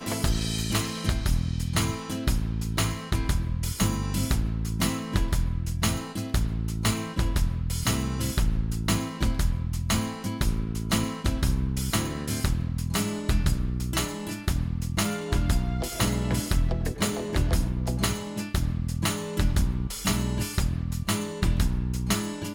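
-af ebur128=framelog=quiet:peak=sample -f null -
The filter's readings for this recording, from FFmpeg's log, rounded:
Integrated loudness:
  I:         -27.9 LUFS
  Threshold: -37.9 LUFS
Loudness range:
  LRA:         0.7 LU
  Threshold: -47.9 LUFS
  LRA low:   -28.2 LUFS
  LRA high:  -27.5 LUFS
Sample peak:
  Peak:      -10.7 dBFS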